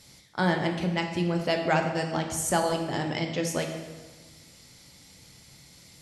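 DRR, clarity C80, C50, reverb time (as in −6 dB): 3.0 dB, 7.5 dB, 6.5 dB, 1.4 s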